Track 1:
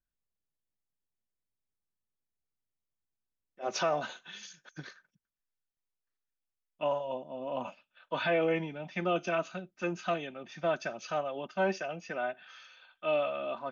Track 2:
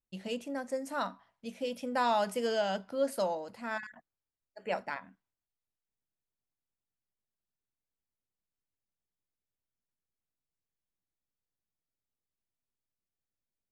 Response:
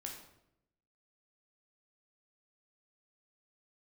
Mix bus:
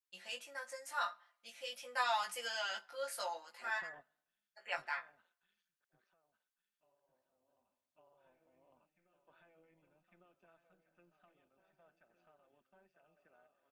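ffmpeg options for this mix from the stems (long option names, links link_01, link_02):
-filter_complex "[0:a]lowpass=3000,acompressor=threshold=-31dB:ratio=6,tremolo=f=170:d=0.621,volume=-19.5dB,asplit=3[link_01][link_02][link_03];[link_02]volume=-21dB[link_04];[link_03]volume=-12.5dB[link_05];[1:a]highpass=1200,aecho=1:1:5.7:0.83,flanger=delay=16:depth=2.7:speed=0.48,volume=0dB,asplit=3[link_06][link_07][link_08];[link_07]volume=-20.5dB[link_09];[link_08]apad=whole_len=604889[link_10];[link_01][link_10]sidechaingate=range=-34dB:threshold=-58dB:ratio=16:detection=peak[link_11];[2:a]atrim=start_sample=2205[link_12];[link_04][link_09]amix=inputs=2:normalize=0[link_13];[link_13][link_12]afir=irnorm=-1:irlink=0[link_14];[link_05]aecho=0:1:1154|2308|3462|4616:1|0.27|0.0729|0.0197[link_15];[link_11][link_06][link_14][link_15]amix=inputs=4:normalize=0,equalizer=frequency=1400:width_type=o:width=0.77:gain=2.5"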